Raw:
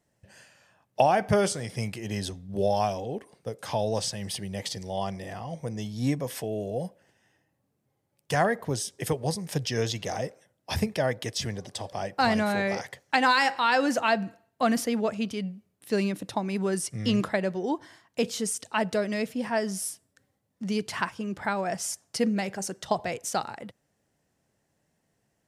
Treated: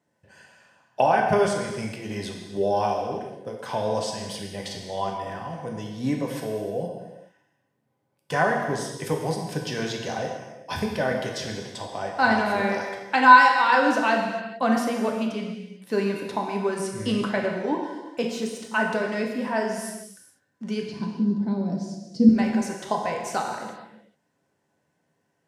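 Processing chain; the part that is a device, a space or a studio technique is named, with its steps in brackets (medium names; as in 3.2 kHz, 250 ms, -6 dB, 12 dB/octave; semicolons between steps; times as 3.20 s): high-pass 140 Hz 12 dB/octave; inside a helmet (treble shelf 4.8 kHz -8.5 dB; small resonant body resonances 1/1.5 kHz, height 12 dB, ringing for 90 ms); 18.31–19.65 s: de-esser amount 85%; 20.85–22.29 s: FFT filter 100 Hz 0 dB, 200 Hz +13 dB, 1.4 kHz -26 dB, 2.7 kHz -22 dB, 4.4 kHz -3 dB, 11 kHz -25 dB; gated-style reverb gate 470 ms falling, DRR 0.5 dB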